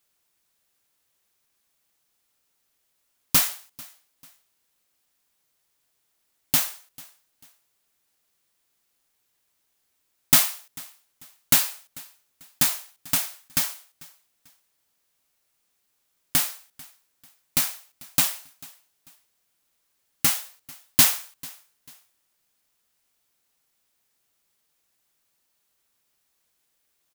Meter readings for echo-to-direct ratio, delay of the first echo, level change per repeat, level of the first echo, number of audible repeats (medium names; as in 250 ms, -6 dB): -22.5 dB, 443 ms, -9.5 dB, -23.0 dB, 2